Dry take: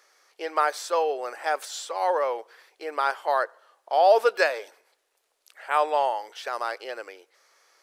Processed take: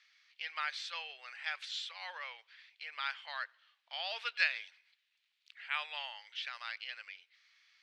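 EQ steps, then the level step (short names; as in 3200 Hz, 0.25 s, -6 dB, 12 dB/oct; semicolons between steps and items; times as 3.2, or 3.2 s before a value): Butterworth band-pass 2900 Hz, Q 1.4; +1.0 dB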